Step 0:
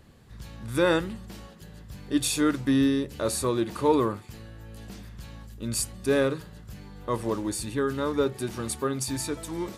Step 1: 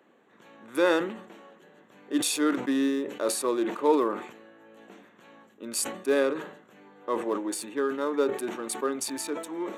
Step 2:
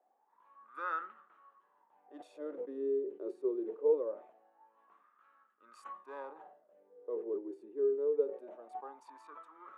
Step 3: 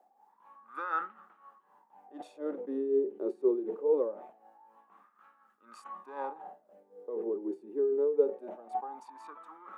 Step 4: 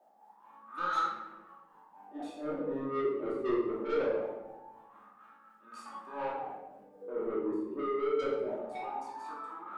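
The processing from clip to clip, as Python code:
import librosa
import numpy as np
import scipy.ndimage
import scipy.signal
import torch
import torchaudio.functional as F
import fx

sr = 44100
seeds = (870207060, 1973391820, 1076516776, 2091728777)

y1 = fx.wiener(x, sr, points=9)
y1 = scipy.signal.sosfilt(scipy.signal.butter(4, 280.0, 'highpass', fs=sr, output='sos'), y1)
y1 = fx.sustainer(y1, sr, db_per_s=90.0)
y2 = fx.wah_lfo(y1, sr, hz=0.23, low_hz=380.0, high_hz=1300.0, q=14.0)
y2 = F.gain(torch.from_numpy(y2), 2.5).numpy()
y3 = fx.small_body(y2, sr, hz=(200.0, 810.0), ring_ms=35, db=10)
y3 = y3 * (1.0 - 0.61 / 2.0 + 0.61 / 2.0 * np.cos(2.0 * np.pi * 4.0 * (np.arange(len(y3)) / sr)))
y3 = F.gain(torch.from_numpy(y3), 6.5).numpy()
y4 = 10.0 ** (-32.0 / 20.0) * np.tanh(y3 / 10.0 ** (-32.0 / 20.0))
y4 = fx.room_shoebox(y4, sr, seeds[0], volume_m3=390.0, walls='mixed', distance_m=2.7)
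y4 = F.gain(torch.from_numpy(y4), -2.5).numpy()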